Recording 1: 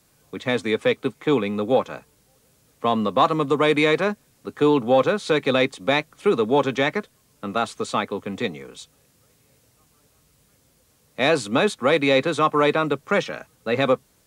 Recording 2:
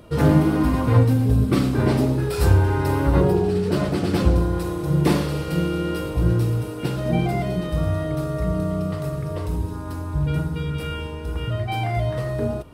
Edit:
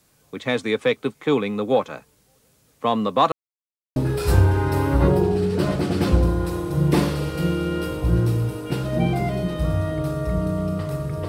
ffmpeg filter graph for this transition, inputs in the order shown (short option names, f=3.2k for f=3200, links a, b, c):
-filter_complex "[0:a]apad=whole_dur=11.28,atrim=end=11.28,asplit=2[a][b];[a]atrim=end=3.32,asetpts=PTS-STARTPTS,afade=t=out:st=3.316:d=0.004:c=hsin[c];[b]atrim=start=3.32:end=3.96,asetpts=PTS-STARTPTS,volume=0[d];[1:a]atrim=start=2.09:end=9.41,asetpts=PTS-STARTPTS,afade=t=in:d=0.004:c=hsin[e];[c][d][e]concat=n=3:v=0:a=1"